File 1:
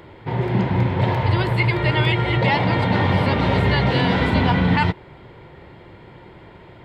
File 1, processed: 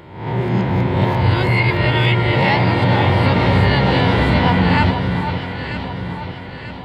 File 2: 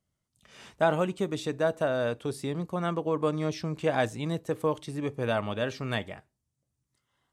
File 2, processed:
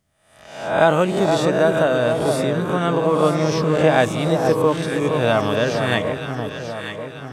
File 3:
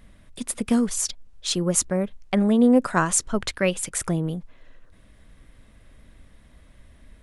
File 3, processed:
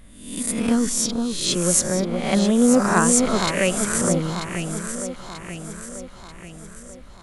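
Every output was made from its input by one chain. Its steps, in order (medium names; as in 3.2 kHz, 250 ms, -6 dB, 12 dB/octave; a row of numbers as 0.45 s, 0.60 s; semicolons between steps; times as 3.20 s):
reverse spectral sustain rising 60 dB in 0.68 s; echo whose repeats swap between lows and highs 469 ms, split 1.3 kHz, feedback 69%, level -5 dB; peak normalisation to -1.5 dBFS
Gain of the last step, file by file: +0.5 dB, +8.5 dB, 0.0 dB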